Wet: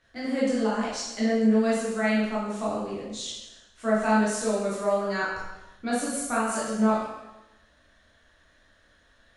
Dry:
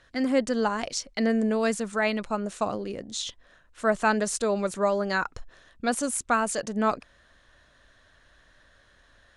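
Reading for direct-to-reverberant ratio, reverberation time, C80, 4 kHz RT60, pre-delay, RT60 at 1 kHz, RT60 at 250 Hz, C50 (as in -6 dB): -8.0 dB, 1.0 s, 3.5 dB, 0.95 s, 11 ms, 1.0 s, 1.0 s, 0.0 dB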